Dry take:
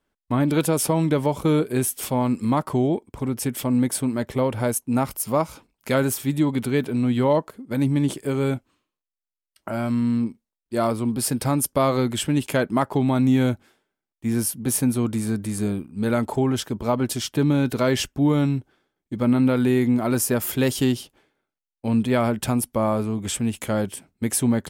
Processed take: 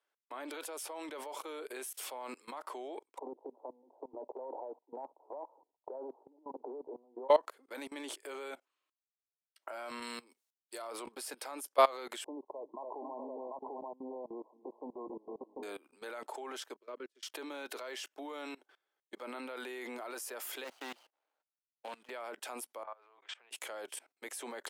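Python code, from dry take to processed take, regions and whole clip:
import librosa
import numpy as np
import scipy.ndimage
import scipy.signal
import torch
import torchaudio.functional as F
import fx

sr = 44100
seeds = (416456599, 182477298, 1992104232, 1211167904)

y = fx.chain(x, sr, fx.cheby1_bandpass(low_hz=250.0, high_hz=960.0, order=5),
    fx.over_compress(threshold_db=-28.0, ratio=-1.0), at=(3.18, 7.29))
y = fx.chain(y, sr, fx.highpass(hz=75.0, slope=6),
    fx.high_shelf(hz=3500.0, db=11.5), at=(10.02, 10.82))
y = fx.chain(y, sr, fx.brickwall_lowpass(high_hz=1100.0),
    fx.echo_multitap(ms=(279, 405, 650, 742), db=(-15.5, -19.5, -17.0, -5.5)), at=(12.24, 15.63))
y = fx.chain(y, sr, fx.lowpass(hz=1200.0, slope=6),
    fx.fixed_phaser(hz=330.0, stages=4),
    fx.upward_expand(threshold_db=-37.0, expansion=2.5), at=(16.76, 17.23))
y = fx.chain(y, sr, fx.median_filter(points=25),
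    fx.highpass(hz=190.0, slope=12),
    fx.peak_eq(hz=390.0, db=-13.0, octaves=0.53), at=(20.64, 22.1))
y = fx.chain(y, sr, fx.over_compress(threshold_db=-27.0, ratio=-1.0),
    fx.highpass(hz=1000.0, slope=12),
    fx.spacing_loss(db_at_10k=40), at=(22.83, 23.51))
y = scipy.signal.sosfilt(scipy.signal.bessel(8, 650.0, 'highpass', norm='mag', fs=sr, output='sos'), y)
y = fx.high_shelf(y, sr, hz=8200.0, db=-6.0)
y = fx.level_steps(y, sr, step_db=22)
y = F.gain(torch.from_numpy(y), 1.0).numpy()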